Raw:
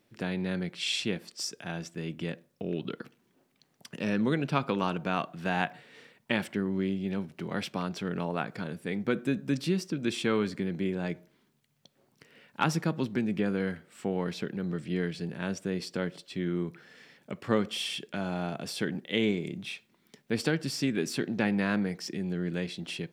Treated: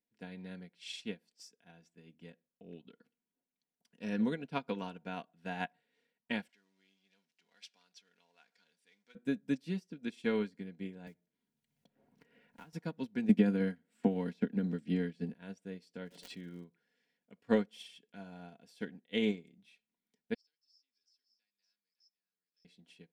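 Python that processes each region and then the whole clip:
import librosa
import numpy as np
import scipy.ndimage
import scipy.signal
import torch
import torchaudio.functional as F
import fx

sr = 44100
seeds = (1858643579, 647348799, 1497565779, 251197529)

y = fx.chain(x, sr, fx.law_mismatch(coded='mu'),
    fx.bandpass_q(hz=4300.0, q=0.73),
    fx.peak_eq(hz=5800.0, db=5.5, octaves=1.0), at=(6.49, 9.15))
y = fx.chain(y, sr, fx.block_float(bits=5),
    fx.peak_eq(hz=83.0, db=5.5, octaves=2.2),
    fx.band_squash(depth_pct=100), at=(11.07, 12.73))
y = fx.chain(y, sr, fx.peak_eq(hz=240.0, db=8.0, octaves=0.67),
    fx.band_squash(depth_pct=70), at=(13.29, 15.34))
y = fx.dmg_crackle(y, sr, seeds[0], per_s=110.0, level_db=-39.0, at=(16.05, 16.64), fade=0.02)
y = fx.pre_swell(y, sr, db_per_s=21.0, at=(16.05, 16.64), fade=0.02)
y = fx.chain(y, sr, fx.bandpass_q(hz=5200.0, q=18.0),
    fx.echo_single(ms=563, db=-11.0),
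    fx.band_squash(depth_pct=40), at=(20.34, 22.65))
y = fx.notch(y, sr, hz=1200.0, q=5.7)
y = y + 0.55 * np.pad(y, (int(4.2 * sr / 1000.0), 0))[:len(y)]
y = fx.upward_expand(y, sr, threshold_db=-37.0, expansion=2.5)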